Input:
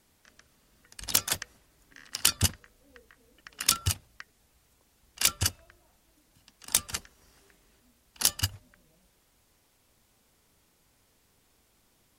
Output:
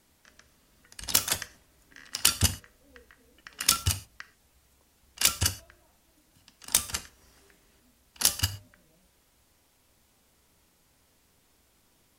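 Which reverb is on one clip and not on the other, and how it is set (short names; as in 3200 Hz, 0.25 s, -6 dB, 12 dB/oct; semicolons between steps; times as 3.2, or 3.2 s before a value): non-linear reverb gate 0.15 s falling, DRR 10.5 dB; gain +1 dB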